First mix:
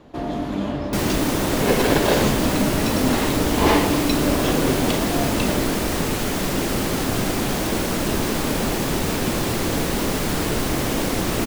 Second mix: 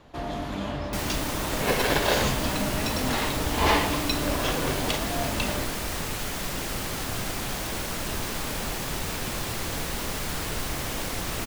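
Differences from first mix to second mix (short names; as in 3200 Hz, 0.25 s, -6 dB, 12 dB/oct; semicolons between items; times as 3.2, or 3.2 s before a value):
second sound -5.0 dB; master: add bell 290 Hz -9.5 dB 2.1 oct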